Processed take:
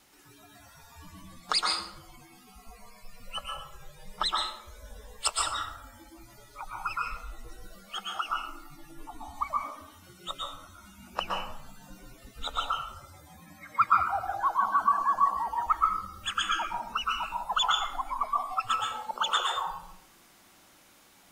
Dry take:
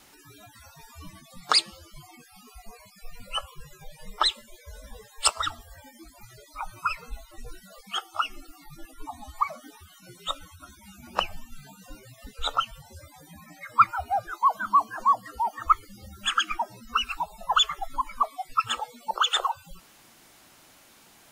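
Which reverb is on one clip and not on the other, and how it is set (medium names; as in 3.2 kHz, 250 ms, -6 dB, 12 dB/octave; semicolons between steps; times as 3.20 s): plate-style reverb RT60 0.73 s, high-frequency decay 0.6×, pre-delay 105 ms, DRR -1.5 dB; trim -6.5 dB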